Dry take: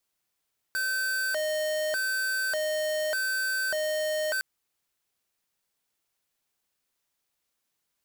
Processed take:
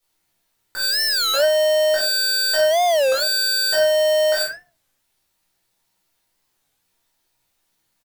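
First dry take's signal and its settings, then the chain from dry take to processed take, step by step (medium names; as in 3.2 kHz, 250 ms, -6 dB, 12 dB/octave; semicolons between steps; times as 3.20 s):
siren hi-lo 617–1540 Hz 0.84 per s square -28.5 dBFS 3.66 s
early reflections 16 ms -3.5 dB, 50 ms -4.5 dB; simulated room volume 270 m³, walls furnished, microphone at 4.4 m; warped record 33 1/3 rpm, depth 250 cents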